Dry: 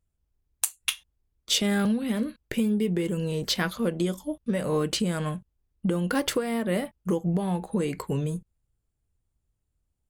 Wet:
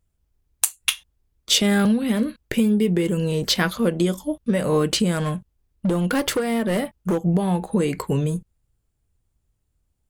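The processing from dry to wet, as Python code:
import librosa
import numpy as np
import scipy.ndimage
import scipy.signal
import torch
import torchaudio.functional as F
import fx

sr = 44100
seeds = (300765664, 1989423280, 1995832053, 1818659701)

y = fx.clip_hard(x, sr, threshold_db=-23.0, at=(5.15, 7.21))
y = y * librosa.db_to_amplitude(6.0)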